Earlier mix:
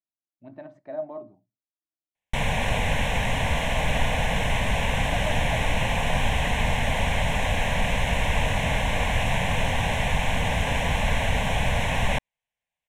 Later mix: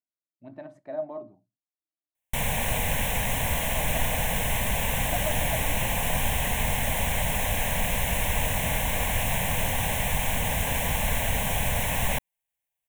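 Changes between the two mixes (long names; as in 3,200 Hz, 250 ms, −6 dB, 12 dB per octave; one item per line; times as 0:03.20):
background −3.5 dB
master: remove low-pass filter 4,800 Hz 12 dB per octave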